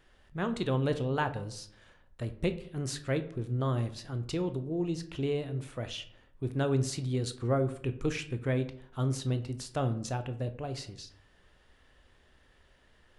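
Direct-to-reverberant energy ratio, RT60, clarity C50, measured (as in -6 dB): 9.0 dB, 0.65 s, 13.5 dB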